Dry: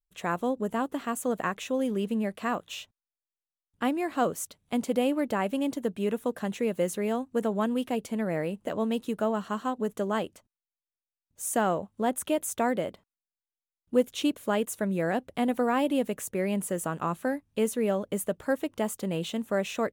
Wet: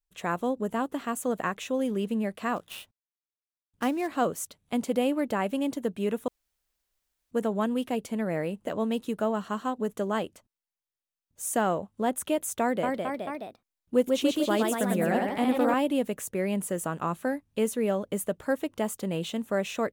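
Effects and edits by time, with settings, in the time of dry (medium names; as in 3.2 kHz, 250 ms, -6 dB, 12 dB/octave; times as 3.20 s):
2.56–4.08 s: dead-time distortion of 0.073 ms
6.28–7.31 s: room tone
12.61–15.74 s: ever faster or slower copies 220 ms, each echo +1 st, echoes 3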